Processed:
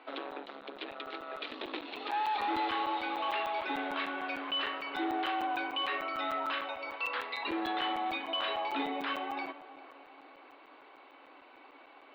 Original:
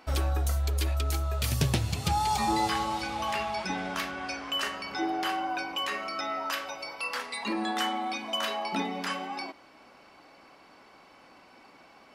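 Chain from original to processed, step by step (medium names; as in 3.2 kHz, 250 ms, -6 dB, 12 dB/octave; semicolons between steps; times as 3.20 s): tape echo 401 ms, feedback 56%, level -16 dB, low-pass 1.8 kHz; overload inside the chain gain 28.5 dB; Chebyshev band-pass 270–3900 Hz, order 5; crackling interface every 0.15 s, samples 256, zero, from 0.31 s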